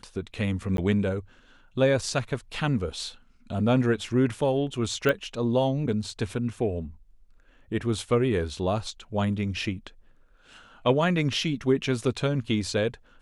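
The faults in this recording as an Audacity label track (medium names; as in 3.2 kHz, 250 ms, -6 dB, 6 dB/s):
0.770000	0.780000	dropout 12 ms
5.090000	5.090000	pop -13 dBFS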